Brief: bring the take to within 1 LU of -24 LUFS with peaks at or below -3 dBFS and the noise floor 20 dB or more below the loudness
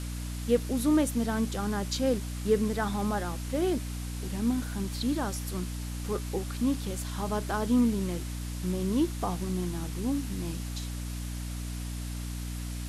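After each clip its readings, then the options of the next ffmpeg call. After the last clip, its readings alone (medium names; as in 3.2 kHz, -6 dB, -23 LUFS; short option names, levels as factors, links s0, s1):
hum 60 Hz; highest harmonic 300 Hz; hum level -33 dBFS; noise floor -36 dBFS; noise floor target -51 dBFS; loudness -31.0 LUFS; peak level -12.5 dBFS; loudness target -24.0 LUFS
-> -af "bandreject=f=60:t=h:w=4,bandreject=f=120:t=h:w=4,bandreject=f=180:t=h:w=4,bandreject=f=240:t=h:w=4,bandreject=f=300:t=h:w=4"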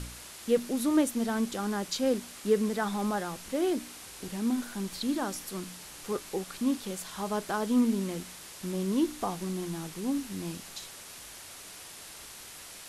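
hum not found; noise floor -47 dBFS; noise floor target -52 dBFS
-> -af "afftdn=nr=6:nf=-47"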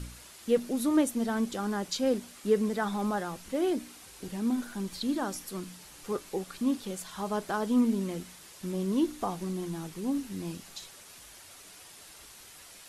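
noise floor -51 dBFS; noise floor target -52 dBFS
-> -af "afftdn=nr=6:nf=-51"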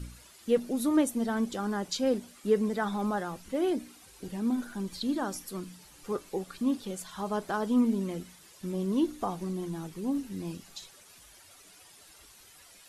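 noise floor -55 dBFS; loudness -31.5 LUFS; peak level -13.0 dBFS; loudness target -24.0 LUFS
-> -af "volume=2.37"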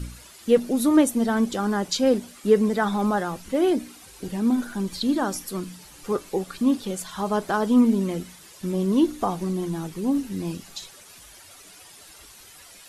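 loudness -24.0 LUFS; peak level -5.5 dBFS; noise floor -48 dBFS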